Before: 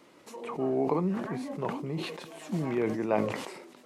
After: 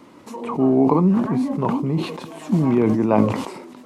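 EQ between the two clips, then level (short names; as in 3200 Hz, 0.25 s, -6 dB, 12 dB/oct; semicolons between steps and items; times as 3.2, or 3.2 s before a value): low shelf 190 Hz +9 dB; dynamic EQ 1800 Hz, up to -5 dB, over -53 dBFS, Q 3.4; fifteen-band EQ 100 Hz +4 dB, 250 Hz +8 dB, 1000 Hz +7 dB; +5.0 dB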